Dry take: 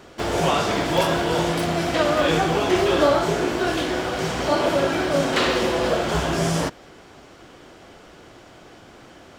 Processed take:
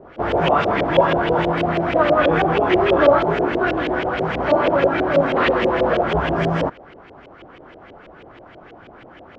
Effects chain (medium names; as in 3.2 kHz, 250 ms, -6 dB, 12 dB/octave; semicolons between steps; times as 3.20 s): LFO low-pass saw up 6.2 Hz 480–3000 Hz; trim +1 dB